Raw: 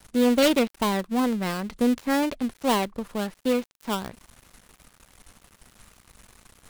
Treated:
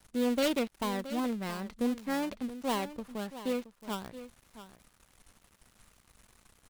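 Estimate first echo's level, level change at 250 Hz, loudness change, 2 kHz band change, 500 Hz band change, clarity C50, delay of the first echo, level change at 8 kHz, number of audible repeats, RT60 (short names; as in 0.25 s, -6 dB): -13.5 dB, -8.5 dB, -9.0 dB, -9.0 dB, -9.0 dB, none, 0.673 s, -9.0 dB, 1, none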